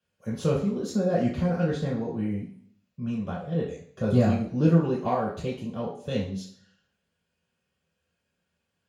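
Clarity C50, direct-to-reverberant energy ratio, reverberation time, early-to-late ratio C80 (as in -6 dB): 6.0 dB, -5.5 dB, 0.55 s, 10.0 dB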